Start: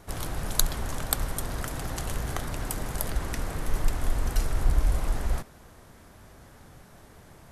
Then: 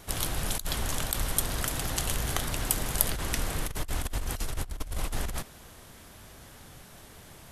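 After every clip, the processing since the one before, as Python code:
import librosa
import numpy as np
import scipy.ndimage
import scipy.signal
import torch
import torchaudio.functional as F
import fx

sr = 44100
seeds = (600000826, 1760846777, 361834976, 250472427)

y = fx.peak_eq(x, sr, hz=3100.0, db=6.0, octaves=1.0)
y = fx.over_compress(y, sr, threshold_db=-26.0, ratio=-0.5)
y = fx.high_shelf(y, sr, hz=4900.0, db=9.0)
y = y * 10.0 ** (-2.5 / 20.0)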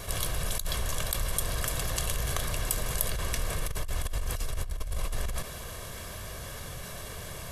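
y = x + 0.54 * np.pad(x, (int(1.8 * sr / 1000.0), 0))[:len(x)]
y = fx.env_flatten(y, sr, amount_pct=50)
y = y * 10.0 ** (-6.0 / 20.0)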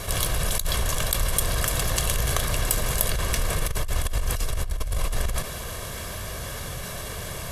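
y = fx.tube_stage(x, sr, drive_db=12.0, bias=0.4)
y = y * 10.0 ** (8.0 / 20.0)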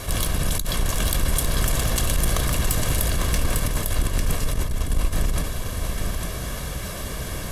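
y = fx.octave_divider(x, sr, octaves=1, level_db=3.0)
y = y + 10.0 ** (-5.0 / 20.0) * np.pad(y, (int(850 * sr / 1000.0), 0))[:len(y)]
y = 10.0 ** (-10.0 / 20.0) * np.tanh(y / 10.0 ** (-10.0 / 20.0))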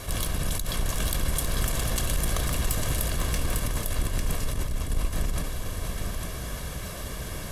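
y = x + 10.0 ** (-12.0 / 20.0) * np.pad(x, (int(492 * sr / 1000.0), 0))[:len(x)]
y = y * 10.0 ** (-5.0 / 20.0)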